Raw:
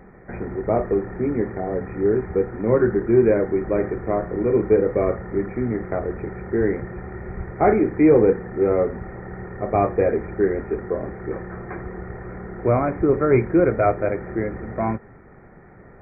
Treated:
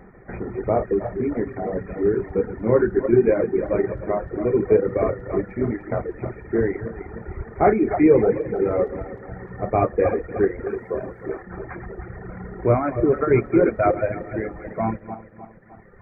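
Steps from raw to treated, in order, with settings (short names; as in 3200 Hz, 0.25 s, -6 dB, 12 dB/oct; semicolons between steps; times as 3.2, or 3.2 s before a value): regenerating reverse delay 0.153 s, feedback 69%, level -6 dB; 10.67–11.42 tone controls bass -3 dB, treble +8 dB; reverb removal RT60 1.8 s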